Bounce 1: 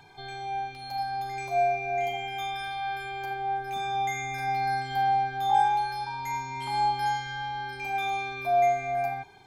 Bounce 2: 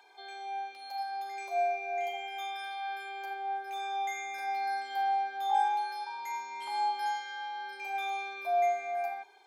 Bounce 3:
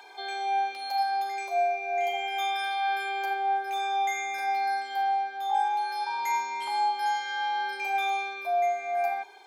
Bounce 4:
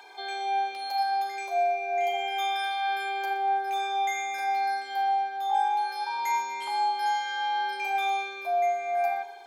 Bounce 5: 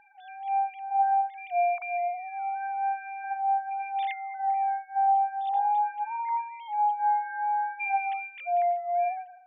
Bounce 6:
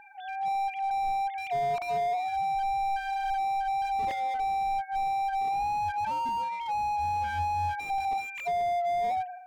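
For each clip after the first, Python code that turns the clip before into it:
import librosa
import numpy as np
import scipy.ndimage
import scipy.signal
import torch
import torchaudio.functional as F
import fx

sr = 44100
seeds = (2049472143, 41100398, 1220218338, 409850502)

y1 = scipy.signal.sosfilt(scipy.signal.cheby2(4, 50, 150.0, 'highpass', fs=sr, output='sos'), x)
y1 = y1 * librosa.db_to_amplitude(-5.0)
y2 = fx.rider(y1, sr, range_db=5, speed_s=0.5)
y2 = y2 * librosa.db_to_amplitude(5.5)
y3 = fx.echo_feedback(y2, sr, ms=120, feedback_pct=53, wet_db=-17.0)
y4 = fx.sine_speech(y3, sr)
y5 = fx.slew_limit(y4, sr, full_power_hz=14.0)
y5 = y5 * librosa.db_to_amplitude(7.5)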